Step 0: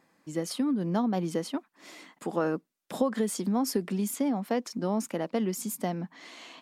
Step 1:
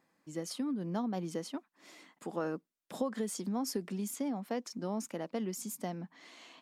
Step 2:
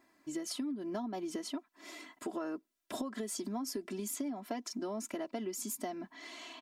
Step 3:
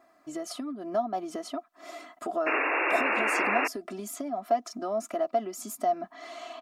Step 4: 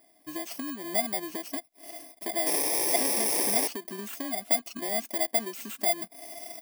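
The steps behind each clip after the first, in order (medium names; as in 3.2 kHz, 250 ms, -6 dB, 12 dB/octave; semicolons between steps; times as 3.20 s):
dynamic bell 6.2 kHz, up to +4 dB, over -53 dBFS, Q 1.6; trim -7.5 dB
comb 3 ms, depth 87%; compression, threshold -39 dBFS, peak gain reduction 10.5 dB; trim +3.5 dB
small resonant body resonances 690/1200 Hz, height 18 dB, ringing for 30 ms; painted sound noise, 2.46–3.68 s, 270–2800 Hz -27 dBFS
bit-reversed sample order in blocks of 32 samples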